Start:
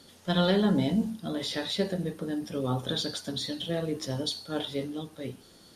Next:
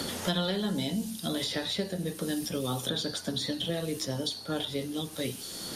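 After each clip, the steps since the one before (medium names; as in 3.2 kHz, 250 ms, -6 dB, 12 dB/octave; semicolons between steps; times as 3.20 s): treble shelf 4.9 kHz +8 dB; three bands compressed up and down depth 100%; trim -3 dB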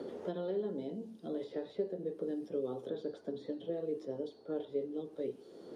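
band-pass filter 420 Hz, Q 3.3; trim +1.5 dB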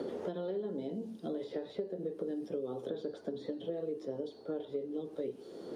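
compression 4:1, threshold -40 dBFS, peak gain reduction 9.5 dB; trim +5.5 dB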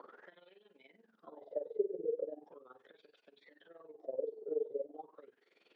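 wah-wah 0.39 Hz 420–2600 Hz, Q 12; AM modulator 21 Hz, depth 70%; trim +13 dB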